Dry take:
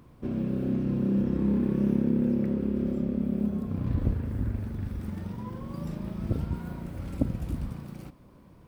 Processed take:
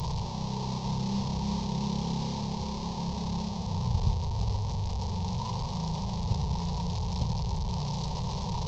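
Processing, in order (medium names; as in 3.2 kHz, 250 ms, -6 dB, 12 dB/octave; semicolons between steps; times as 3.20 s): one-bit delta coder 32 kbps, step -23 dBFS; FFT filter 180 Hz 0 dB, 290 Hz -29 dB, 420 Hz -6 dB, 630 Hz -12 dB, 930 Hz +4 dB, 1.4 kHz -28 dB, 4.2 kHz -1 dB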